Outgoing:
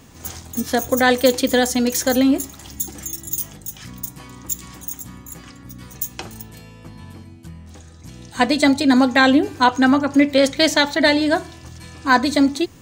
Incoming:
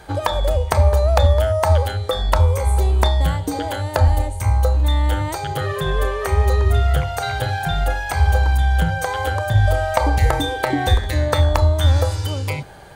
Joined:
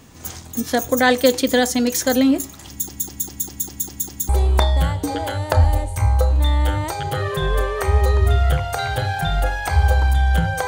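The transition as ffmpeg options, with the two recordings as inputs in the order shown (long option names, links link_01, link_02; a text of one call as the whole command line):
ffmpeg -i cue0.wav -i cue1.wav -filter_complex "[0:a]apad=whole_dur=10.67,atrim=end=10.67,asplit=8[link_01][link_02][link_03][link_04][link_05][link_06][link_07][link_08];[link_01]atrim=end=2.892[link_09];[link_02]atrim=start=2.688:end=2.892[link_10];[link_03]atrim=start=2.688:end=2.892[link_11];[link_04]atrim=start=2.688:end=2.892[link_12];[link_05]atrim=start=2.688:end=2.892[link_13];[link_06]atrim=start=2.688:end=2.892[link_14];[link_07]atrim=start=2.688:end=2.892[link_15];[link_08]atrim=start=2.688:end=2.892[link_16];[1:a]atrim=start=2.728:end=9.11[link_17];[link_09][link_10]acrossfade=duration=0.004:curve1=hsin:curve2=hsin[link_18];[link_18][link_11]acrossfade=duration=0.004:curve1=hsin:curve2=hsin[link_19];[link_19][link_12]acrossfade=duration=0.004:curve1=hsin:curve2=hsin[link_20];[link_20][link_13]acrossfade=duration=0.004:curve1=hsin:curve2=hsin[link_21];[link_21][link_14]acrossfade=duration=0.004:curve1=hsin:curve2=hsin[link_22];[link_22][link_15]acrossfade=duration=0.004:curve1=hsin:curve2=hsin[link_23];[link_23][link_16]acrossfade=duration=0.004:curve1=hsin:curve2=hsin[link_24];[link_24][link_17]acrossfade=duration=0.004:curve1=hsin:curve2=hsin" out.wav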